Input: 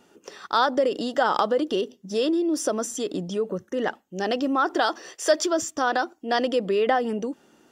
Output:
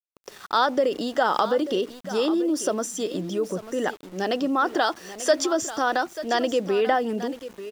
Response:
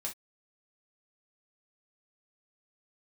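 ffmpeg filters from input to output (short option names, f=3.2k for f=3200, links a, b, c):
-filter_complex "[0:a]asplit=2[a][b];[b]aecho=0:1:889:0.211[c];[a][c]amix=inputs=2:normalize=0,aeval=exprs='val(0)*gte(abs(val(0)),0.0075)':c=same"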